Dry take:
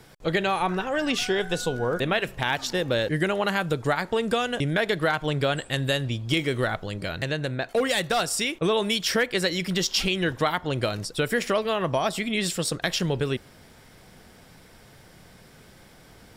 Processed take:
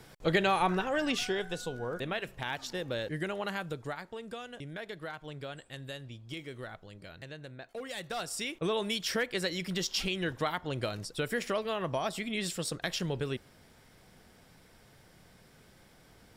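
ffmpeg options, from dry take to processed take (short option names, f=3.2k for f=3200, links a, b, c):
-af "volume=7dB,afade=t=out:st=0.65:d=0.93:silence=0.398107,afade=t=out:st=3.54:d=0.59:silence=0.446684,afade=t=in:st=7.84:d=0.82:silence=0.334965"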